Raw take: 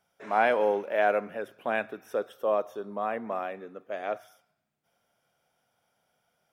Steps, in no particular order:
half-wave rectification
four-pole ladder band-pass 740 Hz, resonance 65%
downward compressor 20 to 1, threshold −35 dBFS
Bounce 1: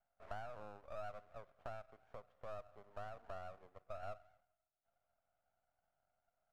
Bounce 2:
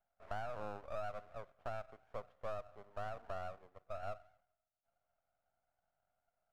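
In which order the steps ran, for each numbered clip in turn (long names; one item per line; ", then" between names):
downward compressor, then four-pole ladder band-pass, then half-wave rectification
four-pole ladder band-pass, then downward compressor, then half-wave rectification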